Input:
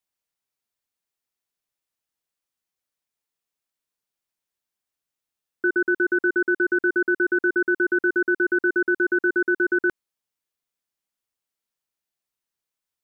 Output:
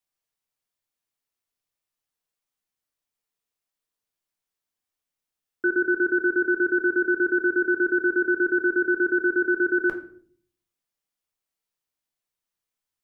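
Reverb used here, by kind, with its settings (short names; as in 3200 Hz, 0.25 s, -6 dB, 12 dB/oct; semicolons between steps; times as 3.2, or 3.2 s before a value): shoebox room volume 58 m³, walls mixed, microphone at 0.42 m; gain -2 dB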